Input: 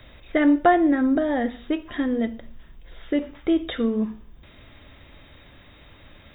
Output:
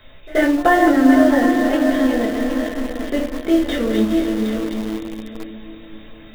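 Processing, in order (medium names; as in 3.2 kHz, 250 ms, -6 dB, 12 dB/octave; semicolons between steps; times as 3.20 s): backward echo that repeats 384 ms, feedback 56%, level -5 dB; bass shelf 250 Hz -3.5 dB; de-hum 114 Hz, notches 4; on a send: echo that smears into a reverb 465 ms, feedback 41%, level -8 dB; on the sum: simulated room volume 120 m³, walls furnished, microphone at 1.5 m; in parallel at -9.5 dB: bit crusher 4-bit; on the sum: pre-echo 79 ms -22.5 dB; trim -1 dB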